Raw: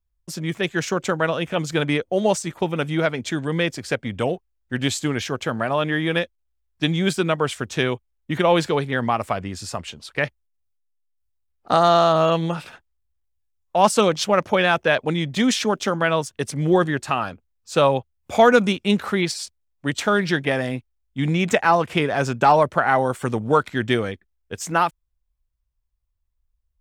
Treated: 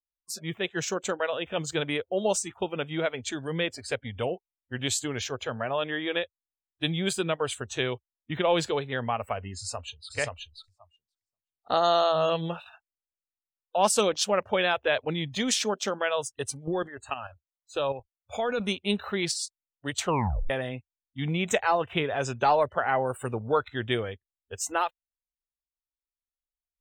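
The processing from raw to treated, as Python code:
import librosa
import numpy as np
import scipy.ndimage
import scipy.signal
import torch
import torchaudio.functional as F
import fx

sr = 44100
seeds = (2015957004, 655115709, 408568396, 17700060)

y = fx.echo_throw(x, sr, start_s=9.57, length_s=0.59, ms=530, feedback_pct=15, wet_db=-2.0)
y = fx.level_steps(y, sr, step_db=10, at=(16.55, 18.6))
y = fx.edit(y, sr, fx.tape_stop(start_s=20.01, length_s=0.49), tone=tone)
y = fx.graphic_eq_10(y, sr, hz=(125, 250, 8000), db=(-3, -8, 3))
y = fx.noise_reduce_blind(y, sr, reduce_db=28)
y = fx.peak_eq(y, sr, hz=1300.0, db=-6.5, octaves=2.1)
y = F.gain(torch.from_numpy(y), -2.0).numpy()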